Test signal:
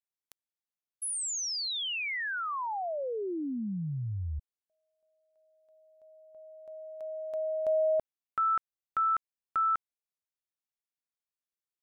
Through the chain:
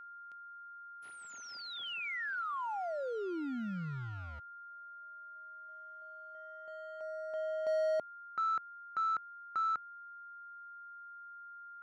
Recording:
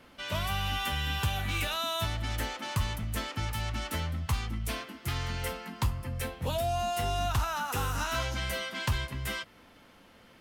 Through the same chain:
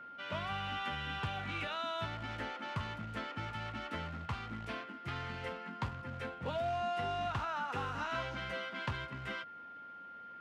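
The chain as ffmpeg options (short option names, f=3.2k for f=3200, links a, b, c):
-af "acrusher=bits=3:mode=log:mix=0:aa=0.000001,highpass=130,lowpass=2.7k,aeval=exprs='val(0)+0.00708*sin(2*PI*1400*n/s)':c=same,volume=-4.5dB"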